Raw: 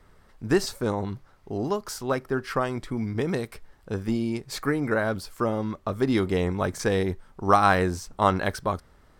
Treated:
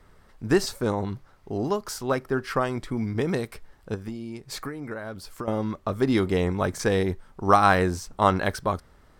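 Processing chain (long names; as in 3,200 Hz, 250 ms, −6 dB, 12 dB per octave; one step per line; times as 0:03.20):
0:03.94–0:05.48: downward compressor 12 to 1, threshold −32 dBFS, peak gain reduction 13 dB
level +1 dB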